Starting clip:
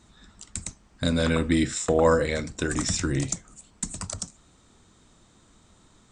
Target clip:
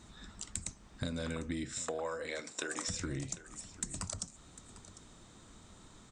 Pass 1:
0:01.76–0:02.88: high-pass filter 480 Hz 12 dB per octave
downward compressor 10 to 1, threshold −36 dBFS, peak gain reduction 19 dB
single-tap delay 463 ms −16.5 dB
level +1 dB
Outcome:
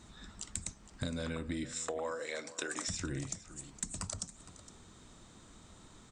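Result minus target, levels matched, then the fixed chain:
echo 287 ms early
0:01.76–0:02.88: high-pass filter 480 Hz 12 dB per octave
downward compressor 10 to 1, threshold −36 dBFS, peak gain reduction 19 dB
single-tap delay 750 ms −16.5 dB
level +1 dB

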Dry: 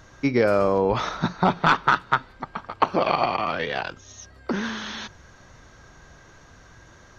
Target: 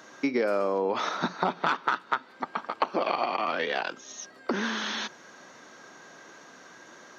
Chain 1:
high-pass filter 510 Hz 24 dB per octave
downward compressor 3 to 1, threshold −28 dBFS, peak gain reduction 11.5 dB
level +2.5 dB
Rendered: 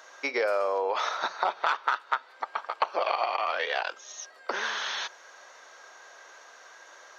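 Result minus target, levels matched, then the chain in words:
250 Hz band −15.0 dB
high-pass filter 220 Hz 24 dB per octave
downward compressor 3 to 1, threshold −28 dBFS, peak gain reduction 11.5 dB
level +2.5 dB

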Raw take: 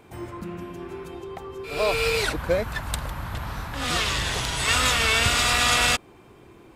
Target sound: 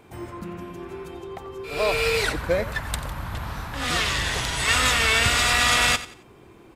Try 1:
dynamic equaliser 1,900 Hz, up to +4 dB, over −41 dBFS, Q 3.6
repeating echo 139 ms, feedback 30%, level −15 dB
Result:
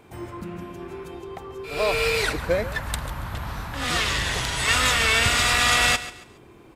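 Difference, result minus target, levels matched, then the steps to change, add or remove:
echo 49 ms late
change: repeating echo 90 ms, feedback 30%, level −15 dB

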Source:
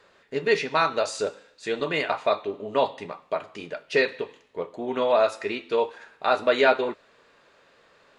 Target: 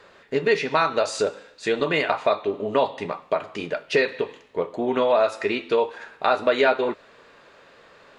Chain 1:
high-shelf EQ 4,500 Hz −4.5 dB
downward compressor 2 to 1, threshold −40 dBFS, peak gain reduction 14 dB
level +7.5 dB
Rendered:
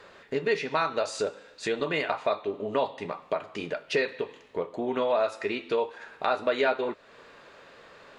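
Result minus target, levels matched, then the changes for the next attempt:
downward compressor: peak gain reduction +6 dB
change: downward compressor 2 to 1, threshold −28 dBFS, peak gain reduction 8 dB

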